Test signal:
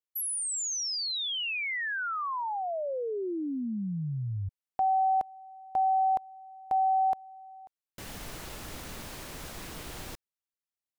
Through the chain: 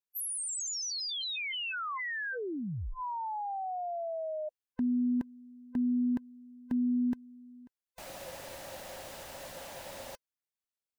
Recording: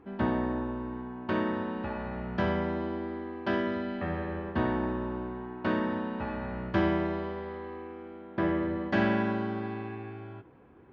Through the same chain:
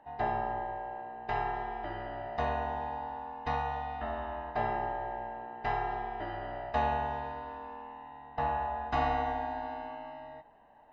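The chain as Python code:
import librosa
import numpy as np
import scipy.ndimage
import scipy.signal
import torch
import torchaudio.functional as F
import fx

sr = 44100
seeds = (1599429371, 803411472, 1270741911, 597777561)

y = fx.band_swap(x, sr, width_hz=500)
y = F.gain(torch.from_numpy(y), -3.5).numpy()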